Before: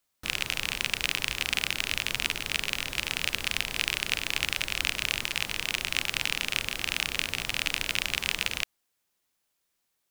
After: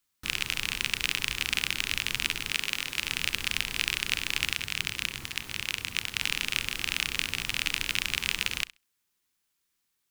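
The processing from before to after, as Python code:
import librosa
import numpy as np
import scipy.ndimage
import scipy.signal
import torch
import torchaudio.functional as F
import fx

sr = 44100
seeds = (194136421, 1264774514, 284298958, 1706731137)

y = fx.low_shelf(x, sr, hz=120.0, db=-11.5, at=(2.52, 3.04))
y = fx.ring_mod(y, sr, carrier_hz=100.0, at=(4.54, 6.22))
y = fx.peak_eq(y, sr, hz=620.0, db=-10.0, octaves=0.79)
y = fx.room_flutter(y, sr, wall_m=11.3, rt60_s=0.21)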